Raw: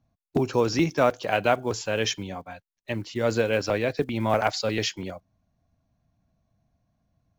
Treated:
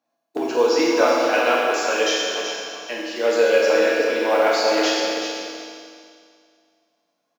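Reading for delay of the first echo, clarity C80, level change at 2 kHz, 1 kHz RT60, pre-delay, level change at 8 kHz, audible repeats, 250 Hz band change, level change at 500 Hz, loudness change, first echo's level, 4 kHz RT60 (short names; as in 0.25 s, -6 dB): 0.379 s, -1.0 dB, +8.5 dB, 2.2 s, 6 ms, +7.5 dB, 1, +3.0 dB, +7.5 dB, +6.0 dB, -7.0 dB, 2.3 s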